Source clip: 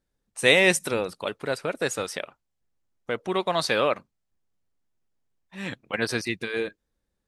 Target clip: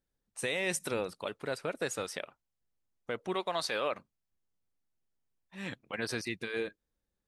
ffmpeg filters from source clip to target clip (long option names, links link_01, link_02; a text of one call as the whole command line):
ffmpeg -i in.wav -filter_complex "[0:a]asettb=1/sr,asplit=3[link_01][link_02][link_03];[link_01]atrim=end=3.344[link_04];[link_02]atrim=start=3.34:end=3.92,asetpts=PTS-STARTPTS,afade=type=in:duration=0.004:curve=qsin,afade=type=out:start_time=0.576:duration=0.004:curve=qsin,equalizer=frequency=120:width_type=o:width=2.4:gain=-8[link_05];[link_03]atrim=start=3.916[link_06];[link_04][link_05]acrossfade=duration=0.004:curve1=hsin:curve2=qsin[link_07];[link_07][link_06]acrossfade=duration=0.004:curve1=qsin:curve2=hsin,alimiter=limit=-15dB:level=0:latency=1:release=45,volume=-6.5dB" out.wav